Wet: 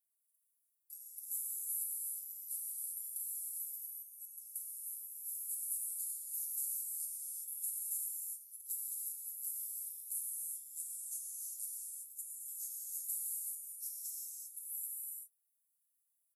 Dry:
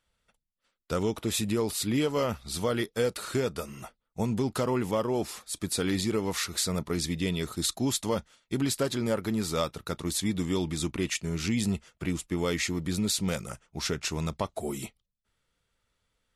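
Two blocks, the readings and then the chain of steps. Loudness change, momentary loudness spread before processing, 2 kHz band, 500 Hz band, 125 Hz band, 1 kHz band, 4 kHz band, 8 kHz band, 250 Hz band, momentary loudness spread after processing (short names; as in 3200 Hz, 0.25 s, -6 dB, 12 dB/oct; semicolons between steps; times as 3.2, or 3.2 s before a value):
-9.5 dB, 7 LU, under -40 dB, under -40 dB, under -40 dB, under -40 dB, -30.5 dB, -3.5 dB, under -40 dB, 8 LU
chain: inverse Chebyshev high-pass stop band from 2500 Hz, stop band 80 dB; comb 6.2 ms; compressor 4:1, threshold -48 dBFS, peak gain reduction 10 dB; non-linear reverb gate 0.42 s flat, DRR -4.5 dB; gain +8 dB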